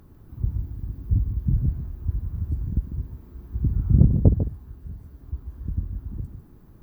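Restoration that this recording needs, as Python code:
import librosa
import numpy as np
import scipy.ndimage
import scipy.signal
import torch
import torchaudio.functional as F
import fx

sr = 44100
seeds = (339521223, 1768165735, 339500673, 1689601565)

y = fx.fix_echo_inverse(x, sr, delay_ms=148, level_db=-9.0)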